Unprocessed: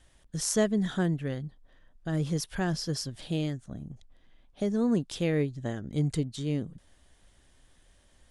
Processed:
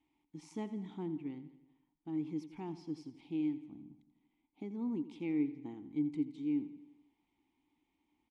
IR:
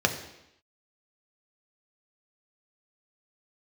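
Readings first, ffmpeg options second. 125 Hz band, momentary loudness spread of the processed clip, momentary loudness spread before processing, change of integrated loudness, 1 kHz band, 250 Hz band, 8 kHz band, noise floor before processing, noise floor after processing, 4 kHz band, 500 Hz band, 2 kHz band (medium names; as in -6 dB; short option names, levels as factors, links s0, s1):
-18.0 dB, 18 LU, 14 LU, -9.0 dB, -11.5 dB, -6.0 dB, under -30 dB, -62 dBFS, -82 dBFS, under -20 dB, -15.0 dB, -18.0 dB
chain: -filter_complex "[0:a]asplit=3[s0][s1][s2];[s0]bandpass=f=300:t=q:w=8,volume=1[s3];[s1]bandpass=f=870:t=q:w=8,volume=0.501[s4];[s2]bandpass=f=2240:t=q:w=8,volume=0.355[s5];[s3][s4][s5]amix=inputs=3:normalize=0,aecho=1:1:85|170|255|340|425|510:0.188|0.105|0.0591|0.0331|0.0185|0.0104,volume=1.12"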